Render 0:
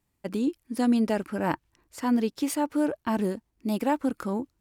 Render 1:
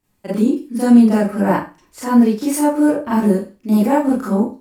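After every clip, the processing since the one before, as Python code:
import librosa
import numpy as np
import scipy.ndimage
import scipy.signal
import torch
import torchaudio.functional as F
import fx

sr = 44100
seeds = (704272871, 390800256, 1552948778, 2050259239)

y = fx.rev_schroeder(x, sr, rt60_s=0.31, comb_ms=30, drr_db=-9.5)
y = fx.dynamic_eq(y, sr, hz=3400.0, q=1.0, threshold_db=-43.0, ratio=4.0, max_db=-8)
y = y * librosa.db_to_amplitude(1.0)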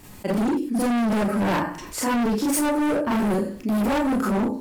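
y = np.clip(10.0 ** (20.5 / 20.0) * x, -1.0, 1.0) / 10.0 ** (20.5 / 20.0)
y = fx.env_flatten(y, sr, amount_pct=50)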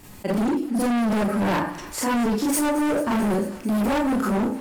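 y = fx.echo_thinned(x, sr, ms=221, feedback_pct=82, hz=710.0, wet_db=-17.0)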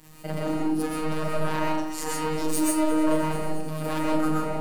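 y = fx.robotise(x, sr, hz=156.0)
y = fx.rev_freeverb(y, sr, rt60_s=0.56, hf_ratio=0.55, predelay_ms=90, drr_db=-2.5)
y = y * librosa.db_to_amplitude(-4.0)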